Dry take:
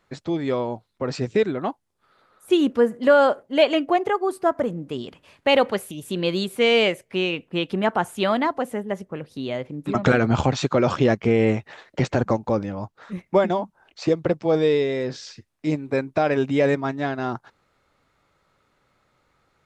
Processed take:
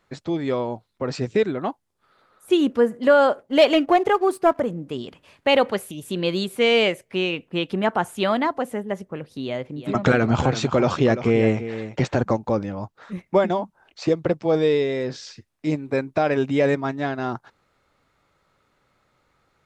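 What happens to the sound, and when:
0:03.39–0:04.60: leveller curve on the samples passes 1
0:09.42–0:12.27: single-tap delay 342 ms −12 dB

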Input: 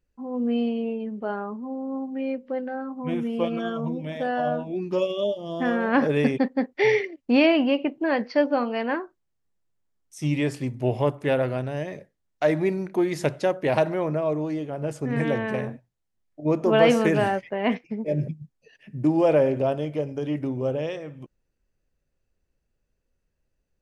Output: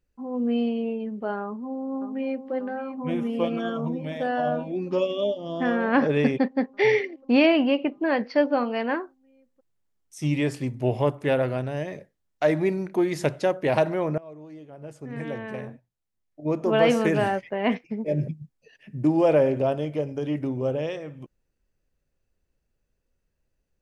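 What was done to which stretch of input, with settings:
0:01.42–0:02.52: delay throw 590 ms, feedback 80%, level −10.5 dB
0:04.90–0:08.64: low-pass filter 6,300 Hz
0:14.18–0:17.63: fade in, from −20 dB

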